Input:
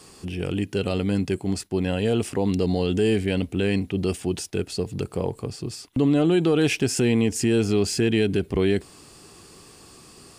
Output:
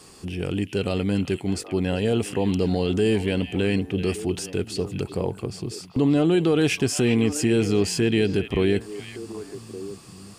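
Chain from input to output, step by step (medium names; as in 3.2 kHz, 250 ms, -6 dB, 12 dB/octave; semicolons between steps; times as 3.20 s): repeats whose band climbs or falls 389 ms, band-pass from 2.6 kHz, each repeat -1.4 oct, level -6.5 dB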